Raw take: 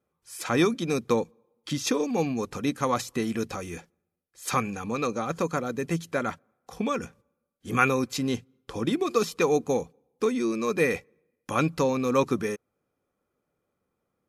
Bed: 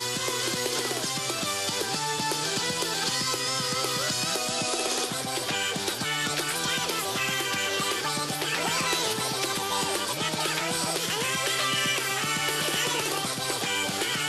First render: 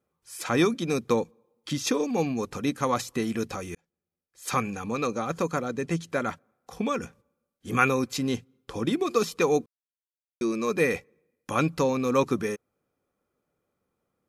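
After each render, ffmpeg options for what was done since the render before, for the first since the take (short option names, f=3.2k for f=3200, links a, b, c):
-filter_complex "[0:a]asettb=1/sr,asplit=3[a][b][c];[a]atrim=end=5.654[d];[b]atrim=start=5.65:end=6.1,asetpts=PTS-STARTPTS,afade=t=in:d=0.004:c=qsin,afade=t=out:st=0.446:d=0.004:c=qsin,lowpass=9.1k[e];[c]atrim=start=6.096[f];[d][e]acrossfade=d=0.004:c1=hsin:c2=qsin[g];[g][f]acrossfade=d=0.004:c1=qsin:c2=hsin,asplit=4[h][i][j][k];[h]atrim=end=3.75,asetpts=PTS-STARTPTS,afade=t=out:st=3.746:d=0.004:c=hsin[l];[i]atrim=start=3.75:end=9.66,asetpts=PTS-STARTPTS,afade=t=in:d=0.87,afade=t=out:st=5.906:d=0.004:c=hsin[m];[j]atrim=start=9.66:end=10.41,asetpts=PTS-STARTPTS,volume=0[n];[k]atrim=start=10.41,asetpts=PTS-STARTPTS,afade=t=in:d=0.004:c=hsin[o];[l][m][n][o]concat=n=4:v=0:a=1"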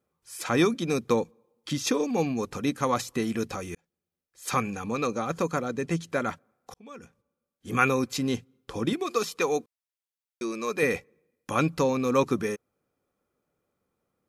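-filter_complex "[0:a]asettb=1/sr,asplit=3[a][b][c];[a]atrim=end=8.934[d];[b]atrim=start=8.93:end=10.83,asetpts=PTS-STARTPTS,afade=t=in:d=0.004:c=qsin,afade=t=out:st=1.896:d=0.004:c=qsin,lowshelf=f=310:g=-10.5[e];[c]atrim=start=10.826[f];[d][e]acrossfade=d=0.004:c1=hsin:c2=qsin[g];[g][f]acrossfade=d=0.004:c1=qsin:c2=hsin,asplit=2[h][i];[h]atrim=end=6.74,asetpts=PTS-STARTPTS,afade=t=out:st=6.736:d=0.004:c=hsin[j];[i]atrim=start=6.74,asetpts=PTS-STARTPTS,afade=t=in:d=1.17[k];[j][k]concat=n=2:v=0:a=1"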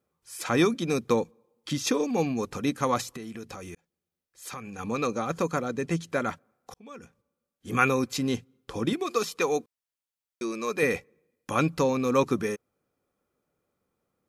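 -filter_complex "[0:a]asettb=1/sr,asplit=3[a][b][c];[a]atrim=end=3.094[d];[b]atrim=start=3.09:end=4.79,asetpts=PTS-STARTPTS,afade=t=in:d=0.004:c=qsin,afade=t=out:st=1.696:d=0.004:c=qsin,acompressor=threshold=-37dB:ratio=4:attack=3.2:release=140:knee=1:detection=peak[e];[c]atrim=start=4.786[f];[d][e]acrossfade=d=0.004:c1=hsin:c2=qsin[g];[g][f]acrossfade=d=0.004:c1=qsin:c2=hsin"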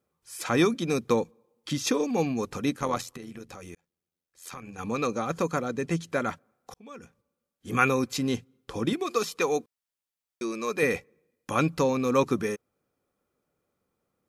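-filter_complex "[0:a]asettb=1/sr,asplit=3[a][b][c];[a]atrim=end=2.764[d];[b]atrim=start=2.76:end=4.78,asetpts=PTS-STARTPTS,afade=t=in:d=0.004:c=qsin,afade=t=out:st=2.016:d=0.004:c=qsin,tremolo=f=86:d=0.621[e];[c]atrim=start=4.776[f];[d][e]acrossfade=d=0.004:c1=hsin:c2=qsin[g];[g][f]acrossfade=d=0.004:c1=qsin:c2=hsin"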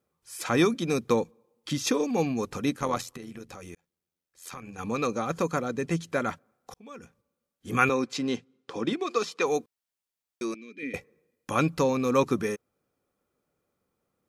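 -filter_complex "[0:a]asettb=1/sr,asplit=3[a][b][c];[a]atrim=end=7.894[d];[b]atrim=start=7.89:end=9.46,asetpts=PTS-STARTPTS,afade=t=in:d=0.004:c=qsin,afade=t=out:st=1.566:d=0.004:c=qsin,highpass=200,lowpass=6k[e];[c]atrim=start=9.456[f];[d][e]acrossfade=d=0.004:c1=hsin:c2=qsin[g];[g][f]acrossfade=d=0.004:c1=qsin:c2=hsin,asettb=1/sr,asplit=3[h][i][j];[h]atrim=end=10.544[k];[i]atrim=start=10.54:end=10.94,asetpts=PTS-STARTPTS,afade=t=in:d=0.004:c=qsin,afade=t=out:st=0.396:d=0.004:c=qsin,asplit=3[l][m][n];[l]bandpass=f=270:t=q:w=8,volume=0dB[o];[m]bandpass=f=2.29k:t=q:w=8,volume=-6dB[p];[n]bandpass=f=3.01k:t=q:w=8,volume=-9dB[q];[o][p][q]amix=inputs=3:normalize=0[r];[j]atrim=start=10.936[s];[k][r]acrossfade=d=0.004:c1=hsin:c2=qsin[t];[t][s]acrossfade=d=0.004:c1=qsin:c2=hsin"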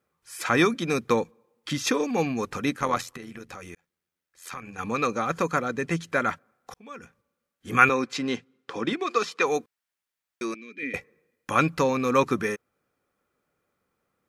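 -af "equalizer=f=1.7k:t=o:w=1.5:g=7.5"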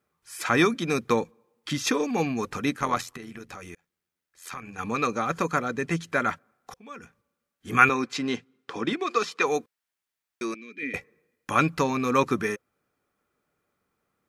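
-af "bandreject=f=520:w=12"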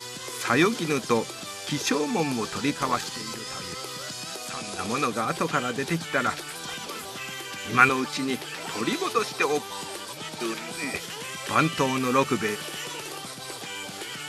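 -filter_complex "[1:a]volume=-8dB[a];[0:a][a]amix=inputs=2:normalize=0"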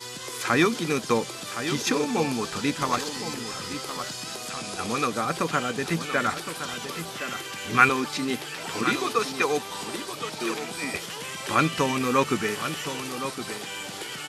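-af "aecho=1:1:1066:0.316"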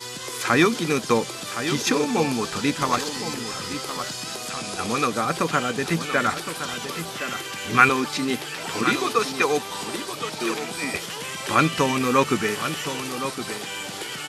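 -af "volume=3dB,alimiter=limit=-1dB:level=0:latency=1"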